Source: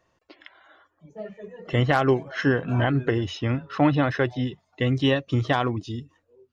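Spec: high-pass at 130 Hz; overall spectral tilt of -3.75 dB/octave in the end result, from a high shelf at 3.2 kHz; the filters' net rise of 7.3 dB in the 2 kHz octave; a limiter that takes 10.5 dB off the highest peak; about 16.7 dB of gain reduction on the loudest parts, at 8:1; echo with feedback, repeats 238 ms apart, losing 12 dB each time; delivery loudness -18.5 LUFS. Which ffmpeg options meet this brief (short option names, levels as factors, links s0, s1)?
-af "highpass=130,equalizer=f=2000:t=o:g=7.5,highshelf=f=3200:g=5.5,acompressor=threshold=0.0251:ratio=8,alimiter=level_in=1.26:limit=0.0631:level=0:latency=1,volume=0.794,aecho=1:1:238|476|714:0.251|0.0628|0.0157,volume=10"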